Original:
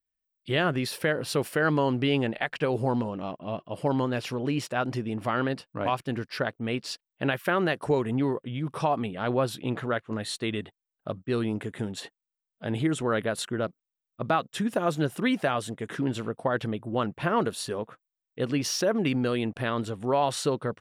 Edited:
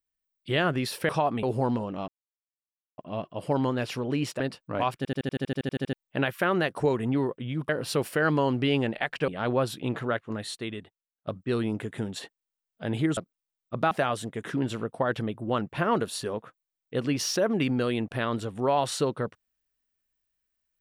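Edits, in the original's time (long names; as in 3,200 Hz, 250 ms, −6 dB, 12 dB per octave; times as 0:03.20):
0:01.09–0:02.68: swap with 0:08.75–0:09.09
0:03.33: splice in silence 0.90 s
0:04.75–0:05.46: remove
0:06.03: stutter in place 0.08 s, 12 plays
0:09.96–0:11.08: fade out, to −20.5 dB
0:12.98–0:13.64: remove
0:14.38–0:15.36: remove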